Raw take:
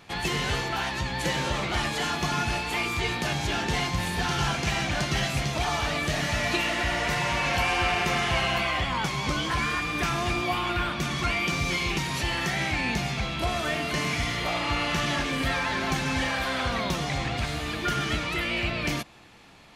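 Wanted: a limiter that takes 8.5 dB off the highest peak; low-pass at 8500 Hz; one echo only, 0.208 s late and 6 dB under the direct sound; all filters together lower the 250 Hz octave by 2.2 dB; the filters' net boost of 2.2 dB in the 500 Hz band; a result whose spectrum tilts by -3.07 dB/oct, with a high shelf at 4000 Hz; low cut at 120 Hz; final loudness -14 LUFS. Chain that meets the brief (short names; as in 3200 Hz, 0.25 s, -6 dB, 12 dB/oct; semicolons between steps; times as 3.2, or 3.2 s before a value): HPF 120 Hz; LPF 8500 Hz; bell 250 Hz -4 dB; bell 500 Hz +4 dB; high shelf 4000 Hz +3.5 dB; limiter -21.5 dBFS; echo 0.208 s -6 dB; gain +14.5 dB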